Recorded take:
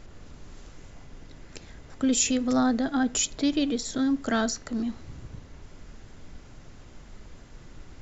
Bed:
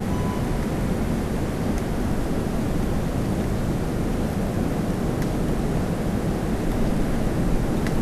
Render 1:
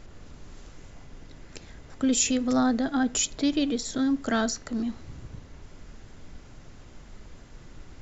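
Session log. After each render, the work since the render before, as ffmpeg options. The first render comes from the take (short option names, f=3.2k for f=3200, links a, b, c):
-af anull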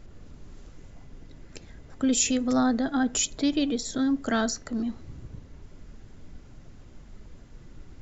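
-af "afftdn=nr=6:nf=-49"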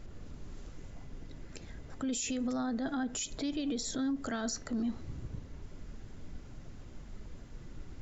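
-af "acompressor=threshold=-26dB:ratio=6,alimiter=level_in=3.5dB:limit=-24dB:level=0:latency=1:release=29,volume=-3.5dB"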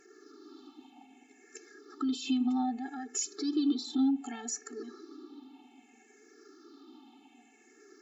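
-af "afftfilt=real='re*pow(10,18/40*sin(2*PI*(0.54*log(max(b,1)*sr/1024/100)/log(2)-(-0.64)*(pts-256)/sr)))':imag='im*pow(10,18/40*sin(2*PI*(0.54*log(max(b,1)*sr/1024/100)/log(2)-(-0.64)*(pts-256)/sr)))':win_size=1024:overlap=0.75,afftfilt=real='re*eq(mod(floor(b*sr/1024/230),2),1)':imag='im*eq(mod(floor(b*sr/1024/230),2),1)':win_size=1024:overlap=0.75"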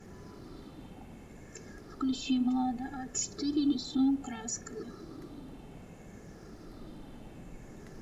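-filter_complex "[1:a]volume=-26dB[a];[0:a][a]amix=inputs=2:normalize=0"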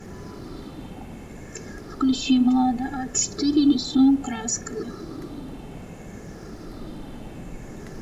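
-af "volume=10.5dB"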